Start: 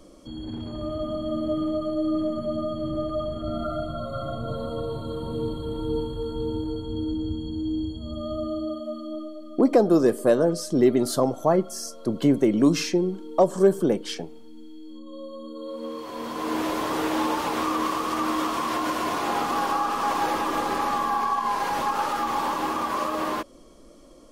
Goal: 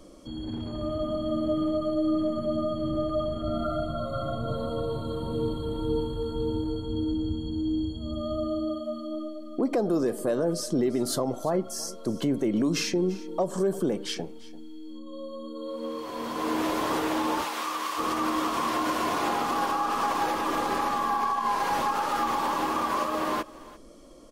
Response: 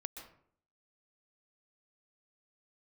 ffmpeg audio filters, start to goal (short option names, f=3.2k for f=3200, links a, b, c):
-filter_complex "[0:a]asplit=3[a][b][c];[a]afade=t=out:st=17.43:d=0.02[d];[b]highpass=f=1.5k:p=1,afade=t=in:st=17.43:d=0.02,afade=t=out:st=17.97:d=0.02[e];[c]afade=t=in:st=17.97:d=0.02[f];[d][e][f]amix=inputs=3:normalize=0,alimiter=limit=-17.5dB:level=0:latency=1:release=105,aecho=1:1:343:0.106"